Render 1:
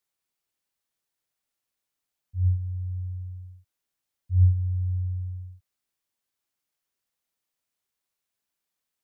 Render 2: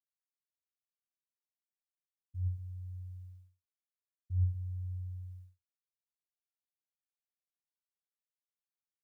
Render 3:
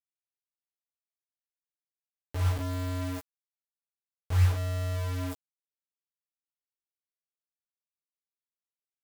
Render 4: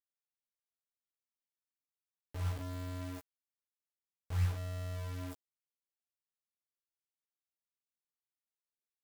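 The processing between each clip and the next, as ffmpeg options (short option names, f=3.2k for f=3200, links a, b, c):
-af "highpass=72,equalizer=f=93:t=o:w=0.36:g=-12,agate=range=-33dB:threshold=-49dB:ratio=3:detection=peak,volume=1dB"
-filter_complex "[0:a]asplit=2[a][b];[b]acompressor=mode=upward:threshold=-41dB:ratio=2.5,volume=1dB[c];[a][c]amix=inputs=2:normalize=0,acrusher=bits=5:mix=0:aa=0.000001,asplit=2[d][e];[e]adelay=14,volume=-3dB[f];[d][f]amix=inputs=2:normalize=0"
-af "tremolo=f=84:d=0.333,volume=-7.5dB"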